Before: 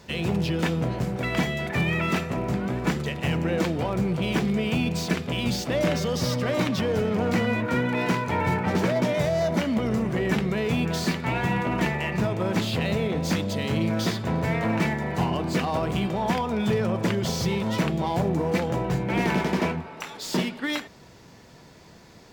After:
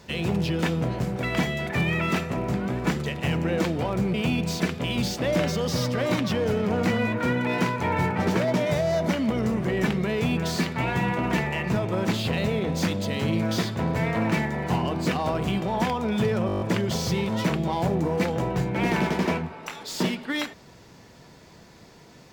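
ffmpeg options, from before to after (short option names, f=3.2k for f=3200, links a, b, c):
-filter_complex "[0:a]asplit=9[a][b][c][d][e][f][g][h][i];[a]atrim=end=4.142[j];[b]atrim=start=4.618:end=16.972[k];[c]atrim=start=16.948:end=16.972[l];[d]atrim=start=16.948:end=16.972[m];[e]atrim=start=16.948:end=16.972[n];[f]atrim=start=16.948:end=16.972[o];[g]atrim=start=16.948:end=16.972[p];[h]atrim=start=16.948:end=16.972[q];[i]atrim=start=16.948[r];[j][k]acrossfade=d=0.004:c1=hsin:c2=hsin[s];[s][l]acrossfade=d=0.004:c1=hsin:c2=hsin[t];[t][m]acrossfade=d=0.004:c1=hsin:c2=hsin[u];[u][n]acrossfade=d=0.004:c1=hsin:c2=hsin[v];[v][o]acrossfade=d=0.004:c1=hsin:c2=hsin[w];[w][p]acrossfade=d=0.004:c1=hsin:c2=hsin[x];[x][q]acrossfade=d=0.004:c1=hsin:c2=hsin[y];[y][r]acrossfade=d=0.004:c1=hsin:c2=hsin"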